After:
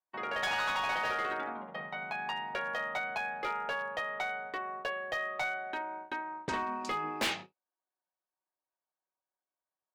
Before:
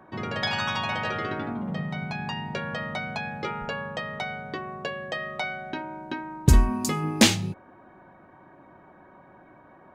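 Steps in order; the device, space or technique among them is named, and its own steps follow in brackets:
walkie-talkie (band-pass filter 590–2,600 Hz; hard clipping −28 dBFS, distortion −10 dB; noise gate −42 dBFS, range −43 dB)
0:06.14–0:06.85: low-pass filter 9,500 Hz 24 dB per octave

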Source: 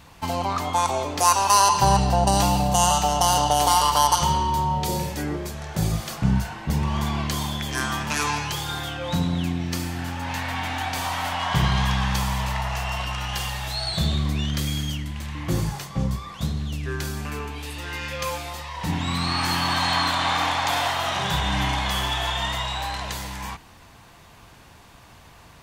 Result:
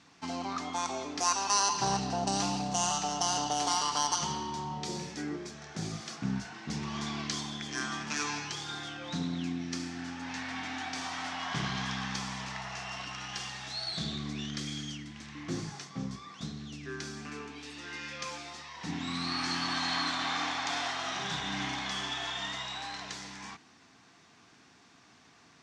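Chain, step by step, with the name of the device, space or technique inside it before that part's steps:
full-range speaker at full volume (highs frequency-modulated by the lows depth 0.2 ms; loudspeaker in its box 200–7,400 Hz, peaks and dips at 260 Hz +5 dB, 560 Hz −10 dB, 940 Hz −7 dB, 2,900 Hz −3 dB, 5,600 Hz +5 dB)
0:06.54–0:07.41: parametric band 5,100 Hz +4 dB 2.4 octaves
level −7.5 dB

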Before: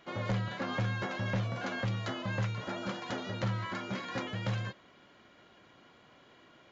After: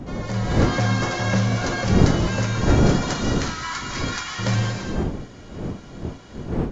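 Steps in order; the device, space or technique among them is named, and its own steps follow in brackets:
high shelf with overshoot 4,300 Hz +8 dB, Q 1.5
0:03.13–0:04.39: high-pass filter 1,000 Hz 24 dB per octave
reverb whose tail is shaped and stops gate 380 ms flat, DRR 2 dB
smartphone video outdoors (wind on the microphone 260 Hz −33 dBFS; automatic gain control gain up to 8.5 dB; level +2 dB; AAC 48 kbit/s 22,050 Hz)

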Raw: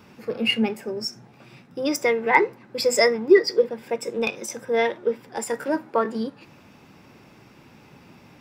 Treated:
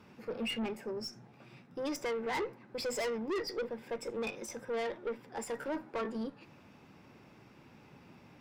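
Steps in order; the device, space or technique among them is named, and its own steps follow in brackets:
tube preamp driven hard (tube saturation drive 25 dB, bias 0.25; high-shelf EQ 4,600 Hz −6 dB)
level −6.5 dB

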